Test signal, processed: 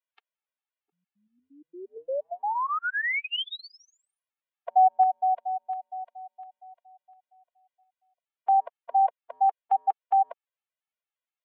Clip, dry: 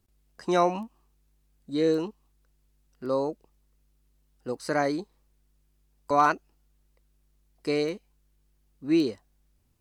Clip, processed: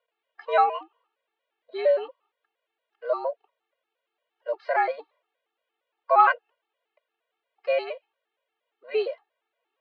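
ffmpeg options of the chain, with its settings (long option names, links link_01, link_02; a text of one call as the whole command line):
ffmpeg -i in.wav -af "highpass=frequency=400:width_type=q:width=0.5412,highpass=frequency=400:width_type=q:width=1.307,lowpass=frequency=3300:width_type=q:width=0.5176,lowpass=frequency=3300:width_type=q:width=0.7071,lowpass=frequency=3300:width_type=q:width=1.932,afreqshift=96,afftfilt=real='re*gt(sin(2*PI*4.3*pts/sr)*(1-2*mod(floor(b*sr/1024/230),2)),0)':imag='im*gt(sin(2*PI*4.3*pts/sr)*(1-2*mod(floor(b*sr/1024/230),2)),0)':win_size=1024:overlap=0.75,volume=6.5dB" out.wav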